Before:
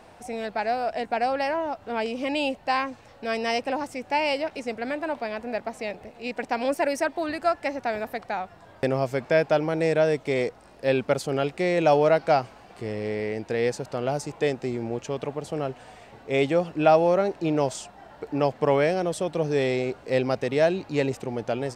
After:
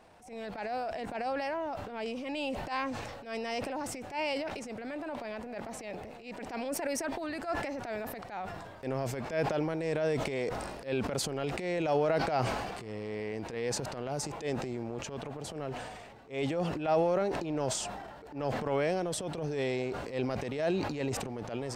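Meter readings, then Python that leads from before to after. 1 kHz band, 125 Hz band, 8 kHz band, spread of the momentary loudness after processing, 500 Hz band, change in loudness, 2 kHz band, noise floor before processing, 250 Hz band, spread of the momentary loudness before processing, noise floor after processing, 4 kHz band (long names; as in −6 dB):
−8.5 dB, −5.5 dB, +1.5 dB, 10 LU, −9.0 dB, −8.5 dB, −8.5 dB, −51 dBFS, −7.0 dB, 11 LU, −47 dBFS, −5.5 dB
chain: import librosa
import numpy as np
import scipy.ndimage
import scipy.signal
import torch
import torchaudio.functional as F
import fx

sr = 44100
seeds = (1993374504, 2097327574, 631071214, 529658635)

y = fx.transient(x, sr, attack_db=-11, sustain_db=6)
y = fx.sustainer(y, sr, db_per_s=36.0)
y = y * librosa.db_to_amplitude(-8.0)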